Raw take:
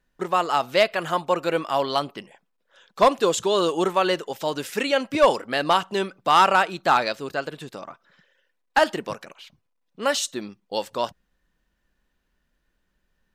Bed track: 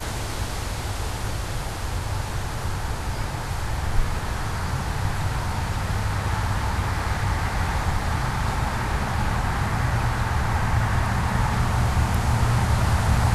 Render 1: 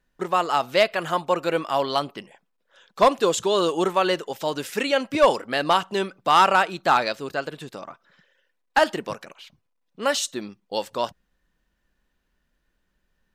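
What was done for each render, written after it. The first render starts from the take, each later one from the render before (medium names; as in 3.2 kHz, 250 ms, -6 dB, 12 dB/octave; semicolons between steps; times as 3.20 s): no audible change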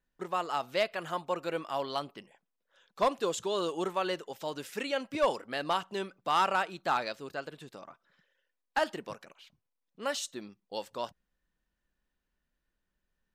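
trim -10.5 dB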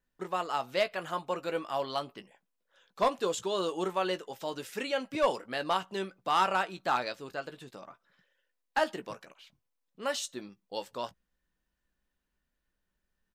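doubling 16 ms -10.5 dB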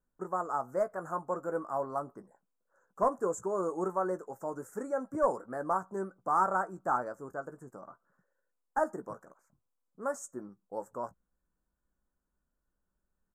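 Chebyshev band-stop 1.4–7.1 kHz, order 3; treble shelf 9.4 kHz -8.5 dB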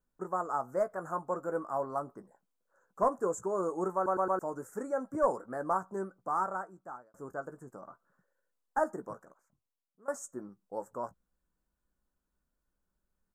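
3.95 s: stutter in place 0.11 s, 4 plays; 5.92–7.14 s: fade out; 9.06–10.08 s: fade out, to -20.5 dB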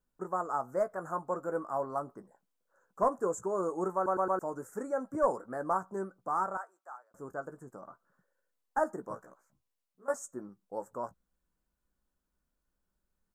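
6.57–7.11 s: Bessel high-pass 810 Hz, order 4; 9.09–10.14 s: doubling 16 ms -3 dB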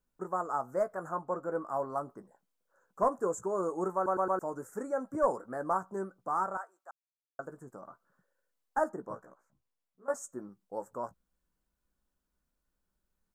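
1.08–1.64 s: treble shelf 5.7 kHz -> 4.1 kHz -8.5 dB; 6.91–7.39 s: mute; 8.89–10.15 s: treble shelf 2.8 kHz -7.5 dB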